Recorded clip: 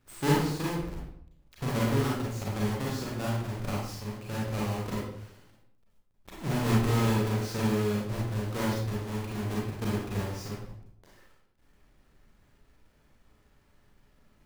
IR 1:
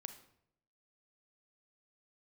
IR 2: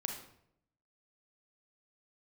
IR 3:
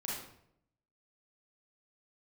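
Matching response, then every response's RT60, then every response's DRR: 3; 0.75, 0.70, 0.70 seconds; 8.5, 2.5, −5.5 decibels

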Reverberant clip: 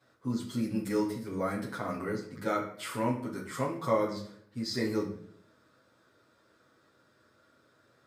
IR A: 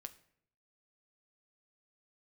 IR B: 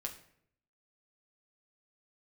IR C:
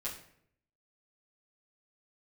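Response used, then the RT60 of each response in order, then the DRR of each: C; 0.65, 0.65, 0.65 seconds; 8.5, 1.0, −8.5 decibels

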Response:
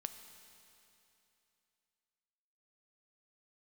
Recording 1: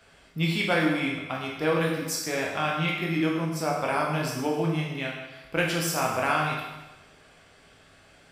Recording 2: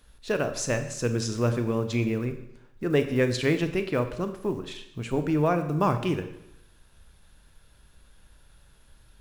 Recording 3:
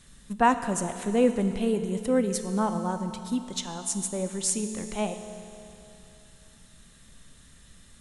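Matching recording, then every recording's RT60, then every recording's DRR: 3; 1.1, 0.85, 2.9 seconds; −3.0, 8.0, 8.0 decibels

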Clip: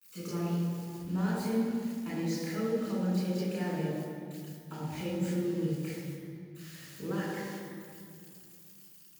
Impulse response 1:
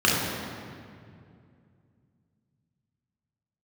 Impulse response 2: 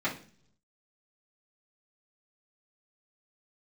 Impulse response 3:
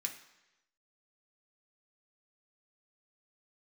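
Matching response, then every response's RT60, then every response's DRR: 1; 2.3, 0.45, 1.0 seconds; −5.5, −10.0, 2.0 decibels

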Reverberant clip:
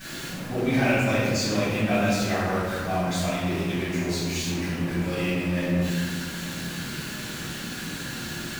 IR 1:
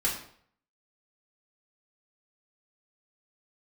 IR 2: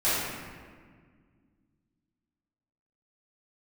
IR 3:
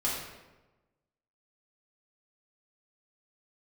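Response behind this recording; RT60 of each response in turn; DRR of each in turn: 2; 0.60, 1.7, 1.1 seconds; −6.0, −14.5, −7.0 decibels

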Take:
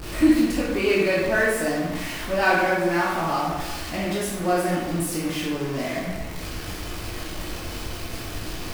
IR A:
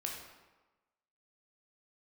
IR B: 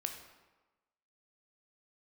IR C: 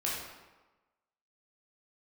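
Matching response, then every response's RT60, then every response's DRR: C; 1.2, 1.2, 1.2 seconds; −0.5, 4.5, −6.0 decibels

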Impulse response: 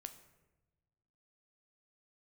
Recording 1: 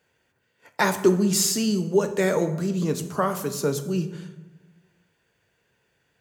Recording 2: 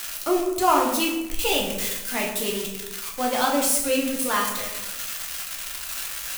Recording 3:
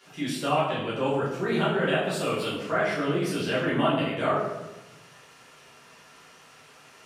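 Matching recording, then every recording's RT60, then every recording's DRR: 1; non-exponential decay, 1.0 s, 1.0 s; 8.0, −2.0, −9.0 decibels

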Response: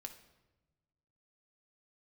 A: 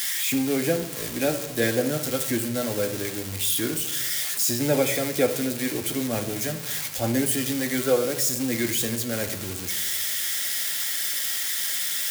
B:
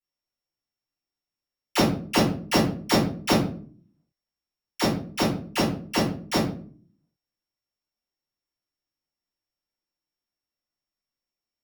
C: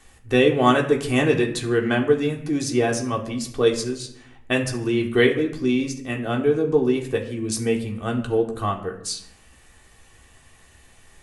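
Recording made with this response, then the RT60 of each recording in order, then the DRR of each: A; 1.1, 0.50, 0.75 seconds; 4.5, −9.5, −0.5 decibels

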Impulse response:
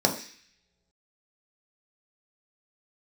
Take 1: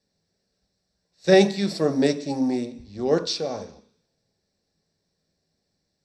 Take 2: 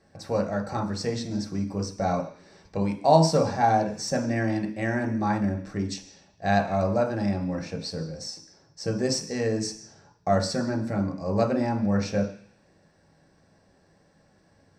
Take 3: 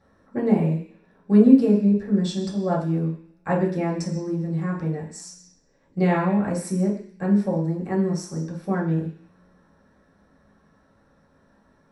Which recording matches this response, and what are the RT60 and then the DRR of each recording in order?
2; non-exponential decay, non-exponential decay, non-exponential decay; 7.0, 1.0, −5.5 decibels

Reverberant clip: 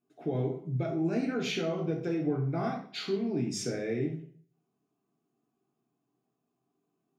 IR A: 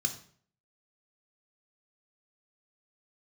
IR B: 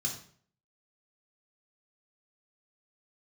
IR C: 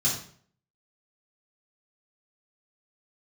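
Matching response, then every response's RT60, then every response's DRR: B; 0.50, 0.50, 0.50 seconds; 5.0, −0.5, −6.5 decibels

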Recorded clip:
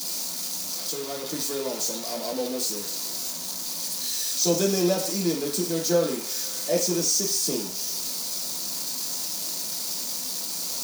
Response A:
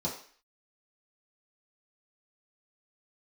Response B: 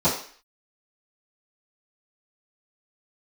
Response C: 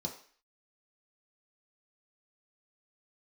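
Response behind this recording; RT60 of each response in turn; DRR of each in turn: A; 0.45, 0.45, 0.45 seconds; −6.5, −15.5, −0.5 decibels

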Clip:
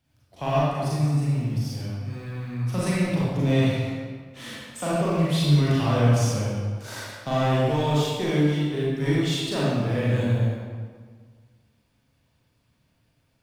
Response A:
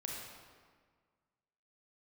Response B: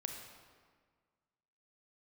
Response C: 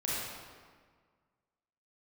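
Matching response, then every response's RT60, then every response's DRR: C; 1.7, 1.7, 1.7 seconds; −2.0, 3.0, −7.5 decibels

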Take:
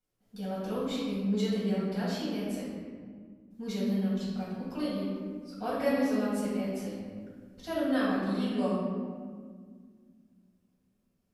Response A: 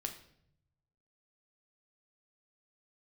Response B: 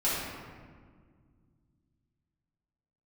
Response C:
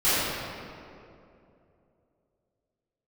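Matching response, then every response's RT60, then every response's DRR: B; 0.70, 1.8, 2.7 seconds; 4.0, −10.0, −17.5 decibels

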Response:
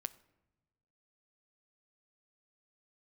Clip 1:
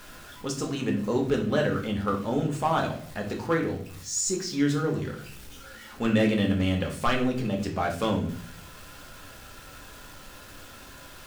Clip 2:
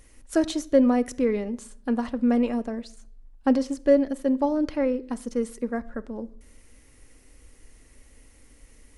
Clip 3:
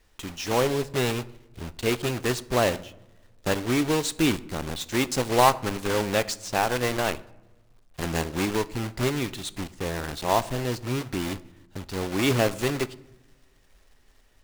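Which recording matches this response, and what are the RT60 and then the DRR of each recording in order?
3; 0.45 s, 0.60 s, non-exponential decay; 0.5, 11.5, 14.0 decibels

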